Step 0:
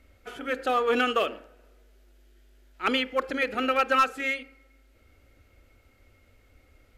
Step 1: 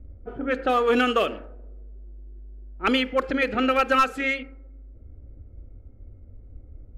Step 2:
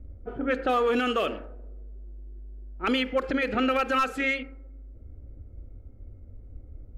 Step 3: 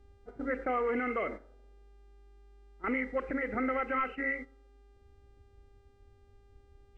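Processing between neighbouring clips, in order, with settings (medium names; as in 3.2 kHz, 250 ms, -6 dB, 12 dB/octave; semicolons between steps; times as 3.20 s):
level-controlled noise filter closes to 430 Hz, open at -21.5 dBFS; bass shelf 190 Hz +12 dB; in parallel at -1 dB: compression, threshold -31 dBFS, peak gain reduction 13.5 dB
peak limiter -16.5 dBFS, peak gain reduction 7.5 dB
knee-point frequency compression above 1.9 kHz 4:1; mains buzz 400 Hz, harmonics 23, -52 dBFS -8 dB/octave; gate -33 dBFS, range -9 dB; trim -7 dB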